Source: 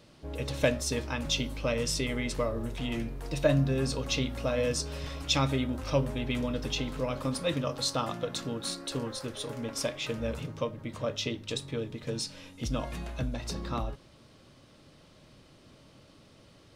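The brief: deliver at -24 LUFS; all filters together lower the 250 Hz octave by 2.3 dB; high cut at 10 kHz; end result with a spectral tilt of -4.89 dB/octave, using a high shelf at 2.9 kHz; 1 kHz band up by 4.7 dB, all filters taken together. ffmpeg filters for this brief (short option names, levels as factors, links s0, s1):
-af "lowpass=10000,equalizer=f=250:t=o:g=-3,equalizer=f=1000:t=o:g=6.5,highshelf=f=2900:g=-3.5,volume=2.51"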